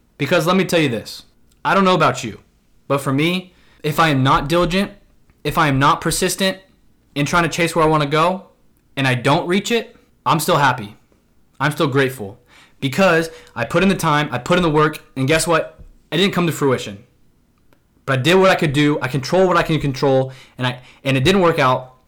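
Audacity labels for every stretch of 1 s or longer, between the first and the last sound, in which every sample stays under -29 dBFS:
16.950000	18.080000	silence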